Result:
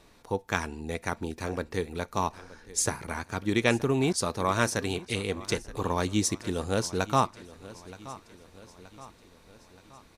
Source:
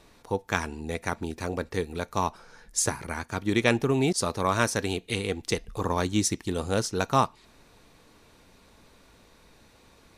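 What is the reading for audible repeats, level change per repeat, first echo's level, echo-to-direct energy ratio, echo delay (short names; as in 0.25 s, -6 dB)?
3, -5.5 dB, -18.0 dB, -16.5 dB, 0.924 s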